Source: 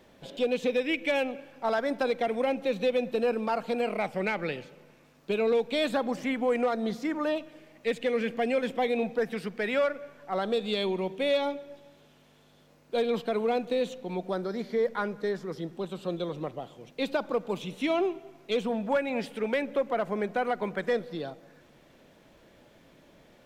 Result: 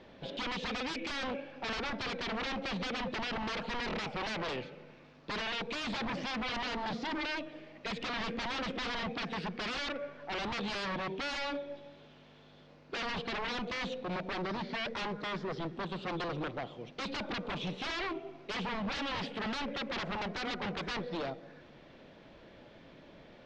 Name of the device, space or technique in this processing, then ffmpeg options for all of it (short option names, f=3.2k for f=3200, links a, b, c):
synthesiser wavefolder: -af "aeval=exprs='0.0211*(abs(mod(val(0)/0.0211+3,4)-2)-1)':c=same,lowpass=f=4.8k:w=0.5412,lowpass=f=4.8k:w=1.3066,volume=2.5dB"